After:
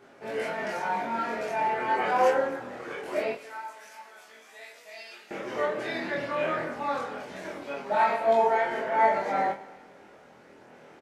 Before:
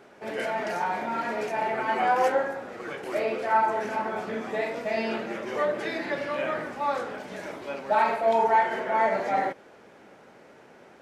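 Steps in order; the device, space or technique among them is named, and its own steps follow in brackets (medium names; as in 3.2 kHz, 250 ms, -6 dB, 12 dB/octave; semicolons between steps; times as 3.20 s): 3.32–5.31 s: differentiator; double-tracked vocal (doubling 25 ms -3 dB; chorus 0.23 Hz, delay 17.5 ms, depth 7.5 ms); Schroeder reverb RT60 1.6 s, combs from 32 ms, DRR 14.5 dB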